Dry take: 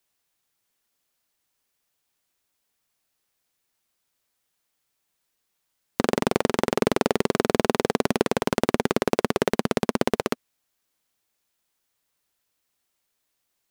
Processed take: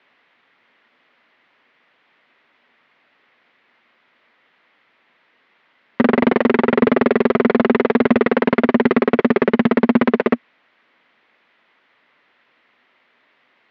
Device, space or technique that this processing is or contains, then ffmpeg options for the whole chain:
overdrive pedal into a guitar cabinet: -filter_complex "[0:a]asplit=2[s0][s1];[s1]highpass=f=720:p=1,volume=50.1,asoftclip=type=tanh:threshold=0.75[s2];[s0][s2]amix=inputs=2:normalize=0,lowpass=f=1400:p=1,volume=0.501,highpass=97,equalizer=f=240:t=q:w=4:g=7,equalizer=f=780:t=q:w=4:g=-3,equalizer=f=2000:t=q:w=4:g=6,lowpass=f=3400:w=0.5412,lowpass=f=3400:w=1.3066"

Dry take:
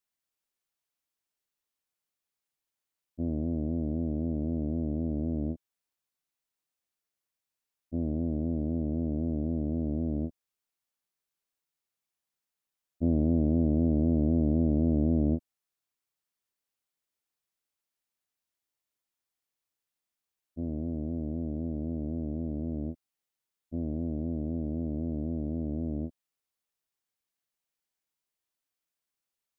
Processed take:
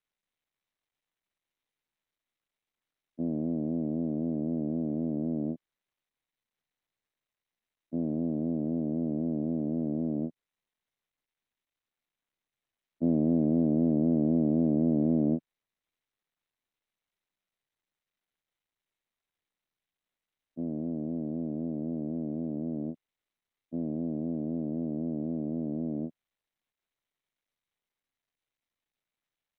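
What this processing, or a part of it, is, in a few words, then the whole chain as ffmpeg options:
Bluetooth headset: -af "highpass=f=150:w=0.5412,highpass=f=150:w=1.3066,aresample=8000,aresample=44100,volume=1.19" -ar 32000 -c:a sbc -b:a 64k

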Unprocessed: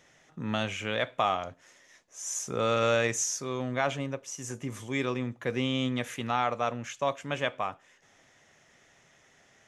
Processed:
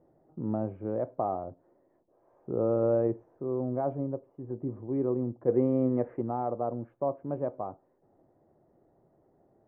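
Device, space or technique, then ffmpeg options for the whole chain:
under water: -filter_complex "[0:a]asplit=3[s0][s1][s2];[s0]afade=t=out:st=5.47:d=0.02[s3];[s1]equalizer=f=500:t=o:w=1:g=6,equalizer=f=1000:t=o:w=1:g=3,equalizer=f=2000:t=o:w=1:g=11,afade=t=in:st=5.47:d=0.02,afade=t=out:st=6.2:d=0.02[s4];[s2]afade=t=in:st=6.2:d=0.02[s5];[s3][s4][s5]amix=inputs=3:normalize=0,lowpass=f=790:w=0.5412,lowpass=f=790:w=1.3066,equalizer=f=340:t=o:w=0.36:g=9"

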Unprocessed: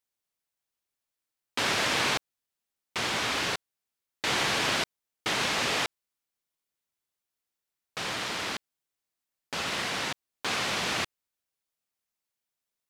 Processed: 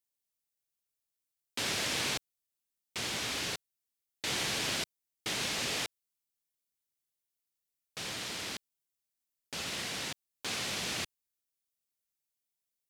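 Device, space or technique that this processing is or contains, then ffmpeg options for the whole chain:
smiley-face EQ: -af "lowshelf=f=160:g=3.5,equalizer=f=1100:t=o:w=1.5:g=-5.5,highshelf=f=5500:g=8,volume=0.473"

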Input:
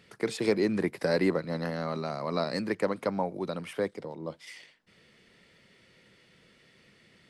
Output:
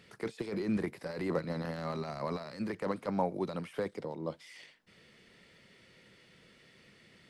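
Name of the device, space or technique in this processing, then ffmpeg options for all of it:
de-esser from a sidechain: -filter_complex "[0:a]asplit=2[s0][s1];[s1]highpass=6900,apad=whole_len=321807[s2];[s0][s2]sidechaincompress=threshold=0.00112:ratio=16:attack=0.88:release=20"

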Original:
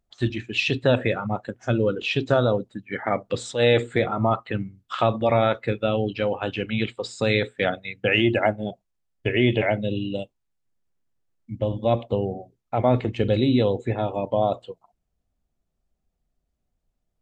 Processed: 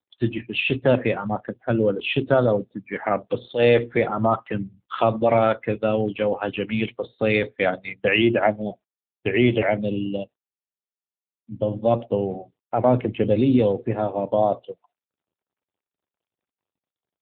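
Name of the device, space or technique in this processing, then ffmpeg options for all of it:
mobile call with aggressive noise cancelling: -af "highpass=120,afftdn=nr=20:nf=-45,volume=1.33" -ar 8000 -c:a libopencore_amrnb -b:a 7950

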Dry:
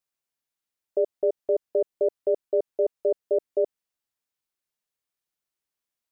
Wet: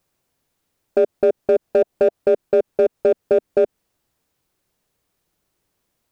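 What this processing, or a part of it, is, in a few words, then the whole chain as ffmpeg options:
mastering chain: -filter_complex "[0:a]asettb=1/sr,asplit=3[s0][s1][s2];[s0]atrim=end=1.644[s3];[s1]atrim=start=1.64:end=2.22,asetpts=PTS-STARTPTS,afade=t=in:d=0.004:c=qsin,afade=t=out:st=0.576:d=0.004:c=qsin,equalizer=f=670:t=o:w=0.37:g=4.5[s4];[s2]atrim=start=2.216[s5];[s3][s4]acrossfade=d=0.004:c1=hsin:c2=qsin[s6];[s6][s5]acrossfade=d=0.004:c1=qsin:c2=hsin,equalizer=f=230:t=o:w=0.47:g=-2.5,acompressor=threshold=0.0631:ratio=2,asoftclip=type=tanh:threshold=0.1,tiltshelf=f=730:g=7,asoftclip=type=hard:threshold=0.106,alimiter=level_in=23.7:limit=0.891:release=50:level=0:latency=1,volume=0.398"

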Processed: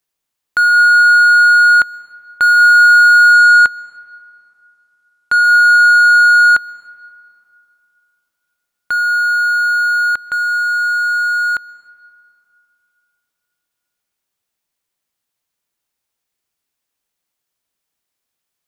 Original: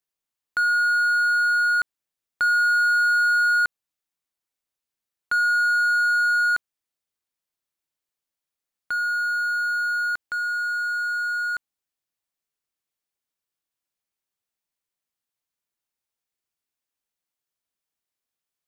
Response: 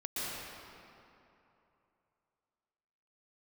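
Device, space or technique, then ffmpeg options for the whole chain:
keyed gated reverb: -filter_complex "[0:a]asettb=1/sr,asplit=3[s0][s1][s2];[s0]atrim=end=3.334[s3];[s1]atrim=start=3.33:end=5.44,asetpts=PTS-STARTPTS,afade=t=in:d=0.004:c=qsin,afade=t=out:st=2.106:d=0.004:c=qsin,lowpass=12000[s4];[s2]atrim=start=5.436[s5];[s3][s4]acrossfade=d=0.004:c1=hsin:c2=qsin[s6];[s6][s5]acrossfade=d=0.004:c1=qsin:c2=hsin,asplit=3[s7][s8][s9];[1:a]atrim=start_sample=2205[s10];[s8][s10]afir=irnorm=-1:irlink=0[s11];[s9]apad=whole_len=823375[s12];[s11][s12]sidechaingate=range=0.282:threshold=0.0891:ratio=16:detection=peak,volume=0.237[s13];[s7][s13]amix=inputs=2:normalize=0,volume=2.82"

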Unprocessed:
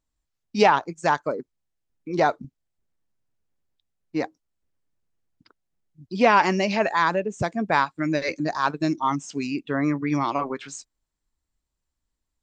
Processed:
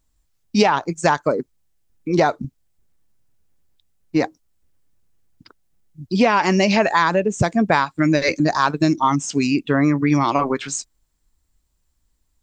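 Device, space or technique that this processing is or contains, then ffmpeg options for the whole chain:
ASMR close-microphone chain: -af "lowshelf=f=150:g=6.5,acompressor=threshold=0.1:ratio=10,highshelf=f=6300:g=7,volume=2.51"

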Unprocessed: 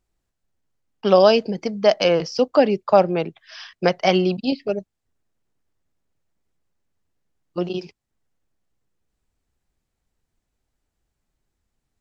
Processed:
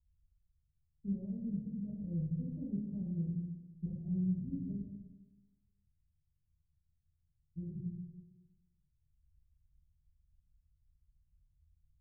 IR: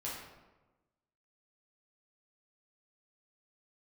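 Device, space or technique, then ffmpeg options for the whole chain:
club heard from the street: -filter_complex "[0:a]alimiter=limit=0.355:level=0:latency=1:release=19,lowpass=f=130:w=0.5412,lowpass=f=130:w=1.3066[s0];[1:a]atrim=start_sample=2205[s1];[s0][s1]afir=irnorm=-1:irlink=0,volume=1.68"

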